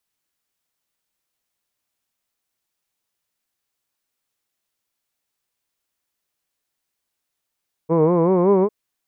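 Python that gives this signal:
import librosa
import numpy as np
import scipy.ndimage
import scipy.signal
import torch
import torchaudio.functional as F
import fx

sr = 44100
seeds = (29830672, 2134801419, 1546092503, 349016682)

y = fx.vowel(sr, seeds[0], length_s=0.8, word='hood', hz=156.0, glide_st=4.5, vibrato_hz=5.3, vibrato_st=1.05)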